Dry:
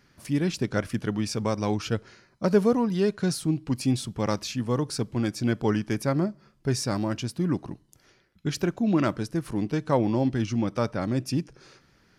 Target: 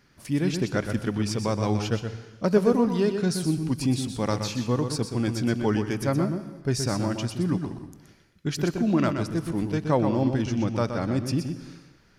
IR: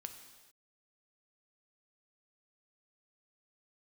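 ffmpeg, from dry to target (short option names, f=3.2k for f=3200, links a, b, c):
-filter_complex "[0:a]asplit=2[a][b];[1:a]atrim=start_sample=2205,lowshelf=f=76:g=11.5,adelay=123[c];[b][c]afir=irnorm=-1:irlink=0,volume=-3dB[d];[a][d]amix=inputs=2:normalize=0"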